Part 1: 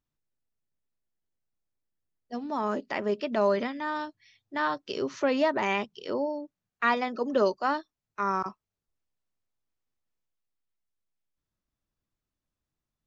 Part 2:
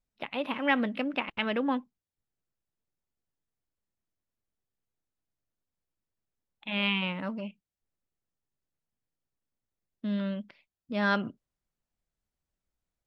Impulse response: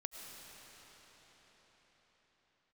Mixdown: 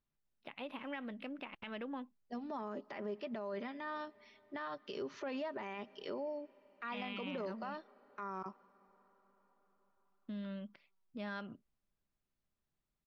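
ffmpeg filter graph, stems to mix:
-filter_complex "[0:a]lowpass=4200,aecho=1:1:5:0.31,acompressor=threshold=0.0112:ratio=2,volume=0.668,asplit=2[s0][s1];[s1]volume=0.1[s2];[1:a]acompressor=threshold=0.02:ratio=3,adelay=250,volume=0.398[s3];[2:a]atrim=start_sample=2205[s4];[s2][s4]afir=irnorm=-1:irlink=0[s5];[s0][s3][s5]amix=inputs=3:normalize=0,alimiter=level_in=2.82:limit=0.0631:level=0:latency=1:release=29,volume=0.355"

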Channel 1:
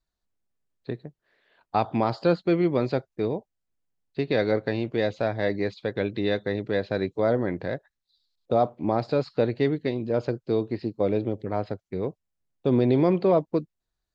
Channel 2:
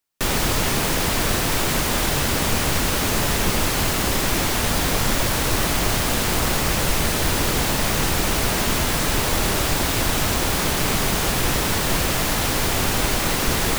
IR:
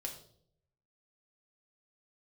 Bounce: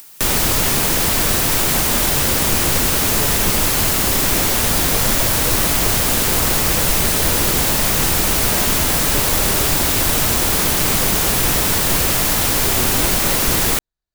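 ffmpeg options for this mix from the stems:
-filter_complex "[0:a]asoftclip=type=tanh:threshold=0.0708,volume=0.596[s0];[1:a]acompressor=mode=upward:threshold=0.0501:ratio=2.5,crystalizer=i=1:c=0,volume=1.19[s1];[s0][s1]amix=inputs=2:normalize=0"

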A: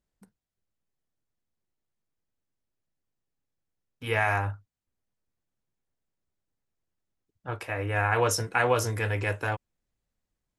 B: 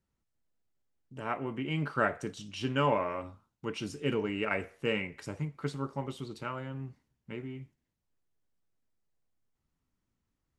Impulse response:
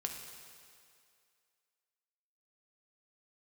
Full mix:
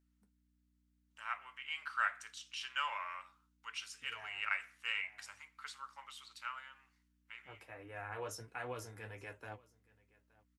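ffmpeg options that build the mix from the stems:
-filter_complex "[0:a]flanger=delay=6.7:depth=4.1:regen=52:speed=1.4:shape=triangular,volume=0.178,asplit=2[s0][s1];[s1]volume=0.0668[s2];[1:a]highpass=f=1200:w=0.5412,highpass=f=1200:w=1.3066,aeval=exprs='val(0)+0.0002*(sin(2*PI*60*n/s)+sin(2*PI*2*60*n/s)/2+sin(2*PI*3*60*n/s)/3+sin(2*PI*4*60*n/s)/4+sin(2*PI*5*60*n/s)/5)':c=same,volume=0.841,asplit=2[s3][s4];[s4]apad=whole_len=466730[s5];[s0][s5]sidechaincompress=threshold=0.002:ratio=8:attack=9.4:release=162[s6];[s2]aecho=0:1:871:1[s7];[s6][s3][s7]amix=inputs=3:normalize=0,highpass=f=120:w=0.5412,highpass=f=120:w=1.3066,aeval=exprs='val(0)+0.000178*(sin(2*PI*60*n/s)+sin(2*PI*2*60*n/s)/2+sin(2*PI*3*60*n/s)/3+sin(2*PI*4*60*n/s)/4+sin(2*PI*5*60*n/s)/5)':c=same"

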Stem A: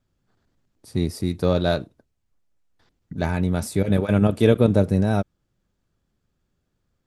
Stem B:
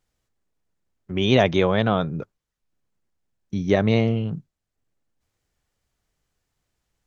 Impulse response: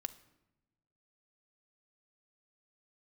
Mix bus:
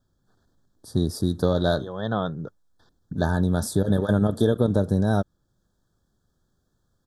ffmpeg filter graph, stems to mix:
-filter_complex "[0:a]volume=1.26,asplit=2[s0][s1];[1:a]adelay=250,volume=0.631[s2];[s1]apad=whole_len=322771[s3];[s2][s3]sidechaincompress=threshold=0.0112:ratio=4:attack=29:release=236[s4];[s0][s4]amix=inputs=2:normalize=0,asuperstop=centerf=2400:order=20:qfactor=1.7,acompressor=threshold=0.158:ratio=6"

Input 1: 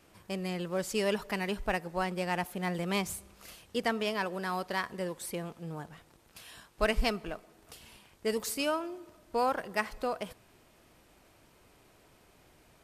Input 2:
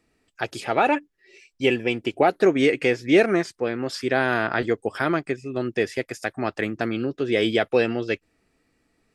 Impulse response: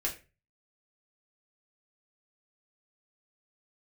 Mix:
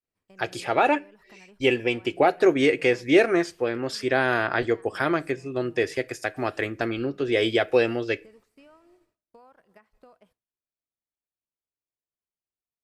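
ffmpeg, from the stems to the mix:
-filter_complex "[0:a]acrossover=split=2500[s0][s1];[s1]acompressor=threshold=0.00282:ratio=4:attack=1:release=60[s2];[s0][s2]amix=inputs=2:normalize=0,alimiter=limit=0.0708:level=0:latency=1:release=181,acompressor=threshold=0.01:ratio=8,volume=0.316[s3];[1:a]equalizer=f=200:t=o:w=0.3:g=-13.5,volume=0.841,asplit=2[s4][s5];[s5]volume=0.15[s6];[2:a]atrim=start_sample=2205[s7];[s6][s7]afir=irnorm=-1:irlink=0[s8];[s3][s4][s8]amix=inputs=3:normalize=0,agate=range=0.0224:threshold=0.00282:ratio=3:detection=peak"

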